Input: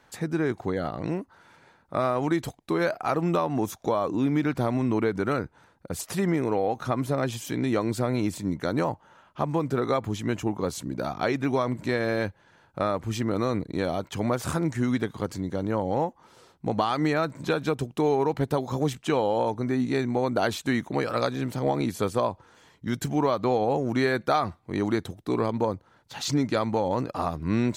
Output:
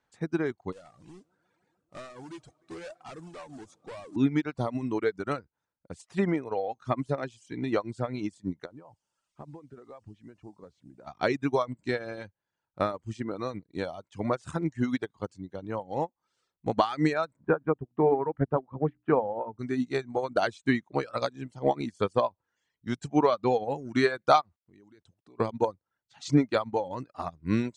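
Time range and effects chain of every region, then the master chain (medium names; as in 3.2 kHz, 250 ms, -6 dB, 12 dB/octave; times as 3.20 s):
0.72–4.16 s: bucket-brigade echo 150 ms, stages 4096, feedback 74%, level -19 dB + hard clipper -28.5 dBFS + modulation noise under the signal 15 dB
8.65–11.07 s: tape spacing loss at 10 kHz 36 dB + compression 4:1, threshold -28 dBFS + word length cut 10-bit, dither triangular
17.36–19.59 s: low-pass 1.7 kHz 24 dB/octave + hum notches 60/120/180/240/300 Hz
24.41–25.40 s: compression 2.5:1, threshold -39 dBFS + small samples zeroed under -58 dBFS
whole clip: steep low-pass 9.2 kHz 48 dB/octave; reverb removal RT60 1.2 s; upward expansion 2.5:1, over -36 dBFS; trim +5 dB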